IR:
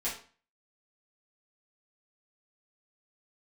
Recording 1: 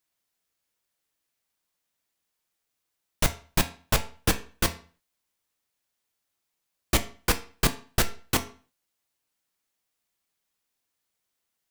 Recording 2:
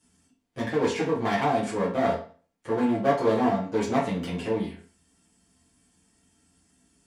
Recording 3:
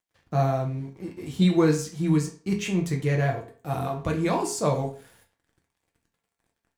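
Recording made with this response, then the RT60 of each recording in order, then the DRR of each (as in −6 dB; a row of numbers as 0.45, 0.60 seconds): 2; 0.40, 0.40, 0.40 seconds; 7.0, −9.5, 0.0 decibels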